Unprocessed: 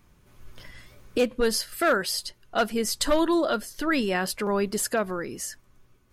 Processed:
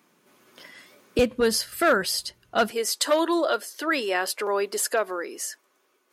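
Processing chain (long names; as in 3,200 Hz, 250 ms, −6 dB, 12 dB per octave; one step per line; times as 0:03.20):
high-pass filter 220 Hz 24 dB per octave, from 0:01.19 46 Hz, from 0:02.71 350 Hz
level +2 dB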